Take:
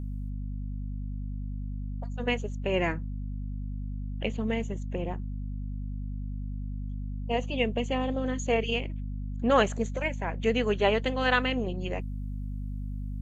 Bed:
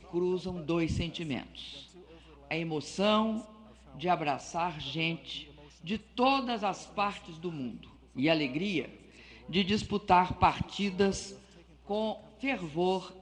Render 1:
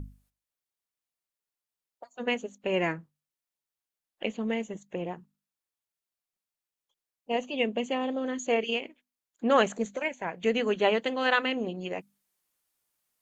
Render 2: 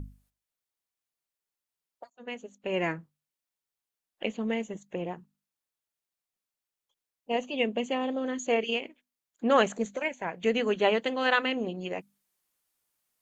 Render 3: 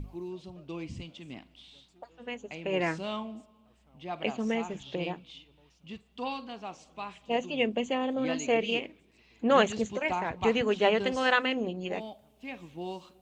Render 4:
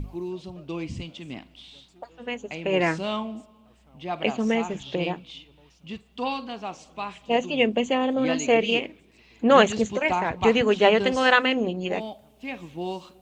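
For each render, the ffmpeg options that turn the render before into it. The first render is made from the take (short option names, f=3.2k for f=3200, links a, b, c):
-af "bandreject=f=50:t=h:w=6,bandreject=f=100:t=h:w=6,bandreject=f=150:t=h:w=6,bandreject=f=200:t=h:w=6,bandreject=f=250:t=h:w=6"
-filter_complex "[0:a]asplit=2[a][b];[a]atrim=end=2.1,asetpts=PTS-STARTPTS,afade=t=out:st=2.096:d=0.004:c=hsin:silence=0.112202[c];[b]atrim=start=2.1,asetpts=PTS-STARTPTS,afade=t=in:d=0.87:silence=0.112202[d];[c][d]concat=n=2:v=0:a=1"
-filter_complex "[1:a]volume=-9dB[a];[0:a][a]amix=inputs=2:normalize=0"
-af "volume=6.5dB"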